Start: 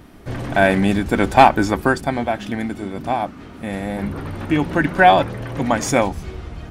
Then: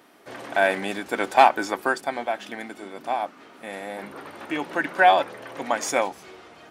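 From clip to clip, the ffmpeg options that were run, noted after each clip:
-af "highpass=450,volume=-4dB"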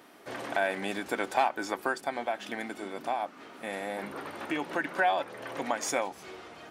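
-af "acompressor=threshold=-31dB:ratio=2"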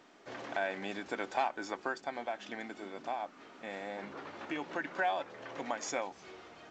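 -af "volume=-6dB" -ar 16000 -c:a pcm_alaw

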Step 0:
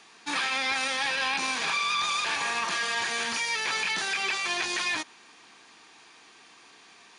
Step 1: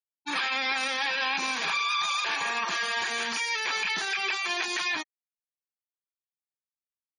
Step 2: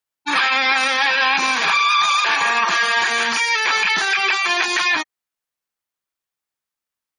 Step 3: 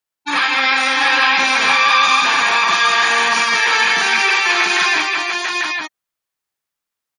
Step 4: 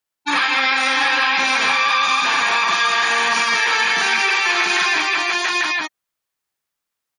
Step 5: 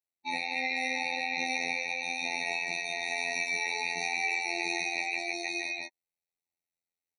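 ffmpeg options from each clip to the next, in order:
-af "afftfilt=real='re*gte(hypot(re,im),0.02)':imag='im*gte(hypot(re,im),0.02)':win_size=1024:overlap=0.75"
-af "equalizer=f=1.3k:w=0.79:g=4.5,volume=8.5dB"
-af "aecho=1:1:49|209|692|845:0.531|0.531|0.562|0.596"
-af "acompressor=threshold=-16dB:ratio=4,volume=1.5dB"
-af "afftfilt=real='hypot(re,im)*cos(PI*b)':imag='0':win_size=2048:overlap=0.75,afftfilt=real='re*eq(mod(floor(b*sr/1024/910),2),0)':imag='im*eq(mod(floor(b*sr/1024/910),2),0)':win_size=1024:overlap=0.75,volume=-8dB"

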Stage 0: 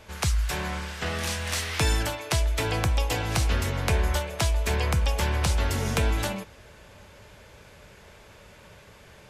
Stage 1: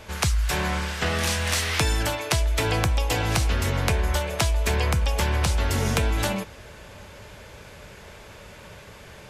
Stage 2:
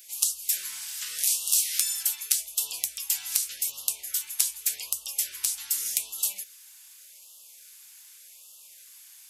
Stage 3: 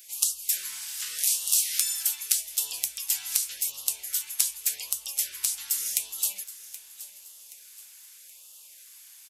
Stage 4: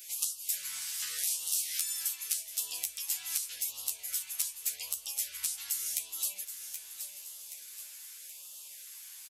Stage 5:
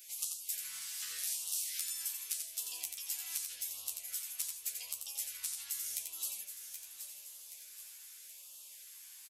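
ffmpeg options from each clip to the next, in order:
-af "acompressor=threshold=-25dB:ratio=6,volume=6dB"
-af "crystalizer=i=5:c=0,aderivative,afftfilt=real='re*(1-between(b*sr/1024,460*pow(1900/460,0.5+0.5*sin(2*PI*0.85*pts/sr))/1.41,460*pow(1900/460,0.5+0.5*sin(2*PI*0.85*pts/sr))*1.41))':imag='im*(1-between(b*sr/1024,460*pow(1900/460,0.5+0.5*sin(2*PI*0.85*pts/sr))/1.41,460*pow(1900/460,0.5+0.5*sin(2*PI*0.85*pts/sr))*1.41))':win_size=1024:overlap=0.75,volume=-9.5dB"
-af "aecho=1:1:775|1550|2325|3100:0.158|0.0666|0.028|0.0117"
-filter_complex "[0:a]acompressor=threshold=-39dB:ratio=2,asplit=2[a][b];[b]adelay=12,volume=-2dB[c];[a][c]amix=inputs=2:normalize=0"
-af "aecho=1:1:88:0.531,volume=-6dB"

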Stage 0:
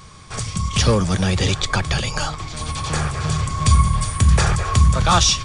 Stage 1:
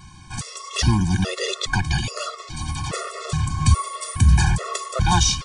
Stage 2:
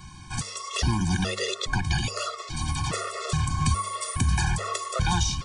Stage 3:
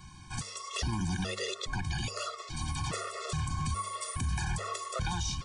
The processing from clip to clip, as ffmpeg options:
-af "afftfilt=real='re*gt(sin(2*PI*1.2*pts/sr)*(1-2*mod(floor(b*sr/1024/360),2)),0)':imag='im*gt(sin(2*PI*1.2*pts/sr)*(1-2*mod(floor(b*sr/1024/360),2)),0)':win_size=1024:overlap=0.75"
-filter_complex "[0:a]acrossover=split=370|1000[a][b][c];[a]acompressor=threshold=-22dB:ratio=4[d];[b]acompressor=threshold=-35dB:ratio=4[e];[c]acompressor=threshold=-28dB:ratio=4[f];[d][e][f]amix=inputs=3:normalize=0,bandreject=f=100.2:t=h:w=4,bandreject=f=200.4:t=h:w=4,bandreject=f=300.6:t=h:w=4,bandreject=f=400.8:t=h:w=4,bandreject=f=501:t=h:w=4,bandreject=f=601.2:t=h:w=4,bandreject=f=701.4:t=h:w=4,bandreject=f=801.6:t=h:w=4,bandreject=f=901.8:t=h:w=4,bandreject=f=1.002k:t=h:w=4"
-af "alimiter=limit=-18dB:level=0:latency=1:release=30,volume=-6dB"

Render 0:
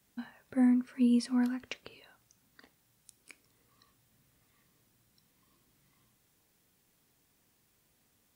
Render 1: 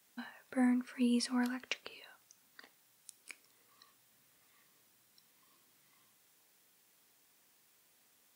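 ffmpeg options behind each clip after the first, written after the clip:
-af "highpass=f=660:p=1,volume=3.5dB"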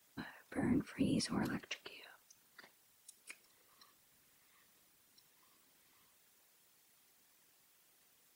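-af "alimiter=level_in=4.5dB:limit=-24dB:level=0:latency=1:release=22,volume=-4.5dB,afftfilt=real='hypot(re,im)*cos(2*PI*random(0))':imag='hypot(re,im)*sin(2*PI*random(1))':win_size=512:overlap=0.75,volume=5dB"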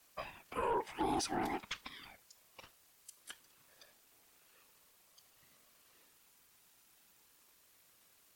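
-af "aeval=exprs='0.0631*sin(PI/2*1.78*val(0)/0.0631)':c=same,aeval=exprs='val(0)*sin(2*PI*720*n/s+720*0.25/0.37*sin(2*PI*0.37*n/s))':c=same,volume=-3dB"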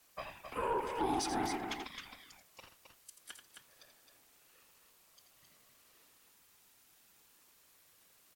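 -af "aecho=1:1:84.55|265.3:0.355|0.501"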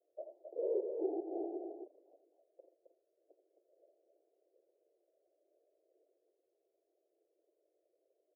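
-af "asuperpass=centerf=470:order=12:qfactor=1.4,volume=3dB"

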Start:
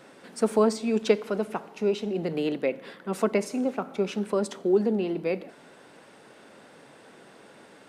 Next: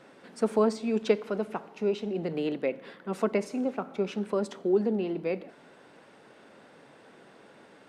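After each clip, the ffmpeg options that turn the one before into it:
-af "highshelf=f=6.8k:g=-10,volume=-2.5dB"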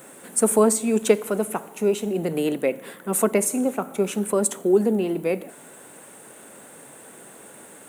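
-af "aexciter=amount=14.7:drive=7.5:freq=7.5k,volume=6.5dB"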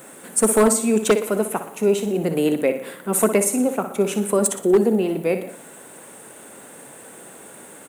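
-af "aecho=1:1:60|120|180|240|300:0.299|0.134|0.0605|0.0272|0.0122,aeval=exprs='0.316*(abs(mod(val(0)/0.316+3,4)-2)-1)':c=same,volume=2.5dB"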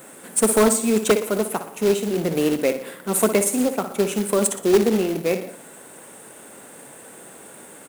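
-af "acrusher=bits=3:mode=log:mix=0:aa=0.000001,volume=-1dB"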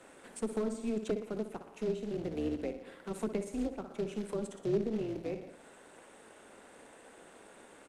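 -filter_complex "[0:a]highpass=230,lowpass=5.3k,tremolo=f=220:d=0.621,acrossover=split=380[a][b];[b]acompressor=threshold=-40dB:ratio=3[c];[a][c]amix=inputs=2:normalize=0,volume=-7dB"

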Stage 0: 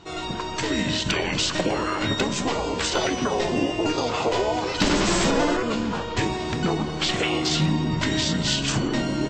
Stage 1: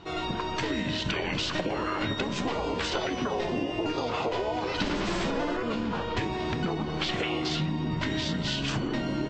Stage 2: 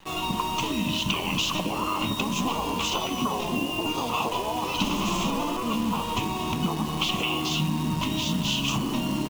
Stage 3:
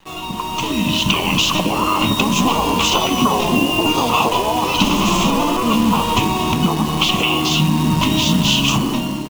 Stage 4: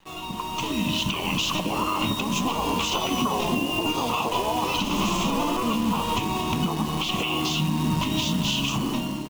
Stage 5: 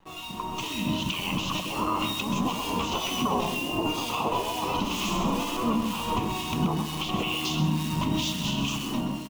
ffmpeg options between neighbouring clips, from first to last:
-af "lowpass=4.2k,acompressor=threshold=-26dB:ratio=6"
-af "firequalizer=gain_entry='entry(120,0);entry(200,7);entry(380,-3);entry(560,-3);entry(1100,10);entry(1600,-18);entry(2700,9);entry(4500,-2);entry(6500,11);entry(9500,-2)':delay=0.05:min_phase=1,aeval=exprs='sgn(val(0))*max(abs(val(0))-0.00224,0)':c=same,acrusher=bits=7:dc=4:mix=0:aa=0.000001"
-af "dynaudnorm=f=260:g=5:m=11.5dB,volume=1dB"
-af "alimiter=limit=-7.5dB:level=0:latency=1:release=184,volume=-7dB"
-filter_complex "[0:a]acrossover=split=1600[a][b];[a]aeval=exprs='val(0)*(1-0.7/2+0.7/2*cos(2*PI*2.1*n/s))':c=same[c];[b]aeval=exprs='val(0)*(1-0.7/2-0.7/2*cos(2*PI*2.1*n/s))':c=same[d];[c][d]amix=inputs=2:normalize=0,aecho=1:1:129:0.335"

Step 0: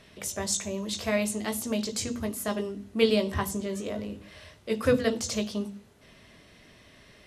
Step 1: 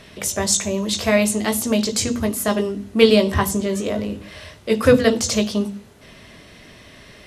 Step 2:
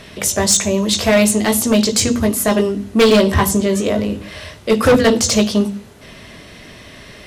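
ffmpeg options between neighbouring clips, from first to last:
-af "acontrast=58,volume=4dB"
-af "asoftclip=type=hard:threshold=-13dB,volume=6dB"

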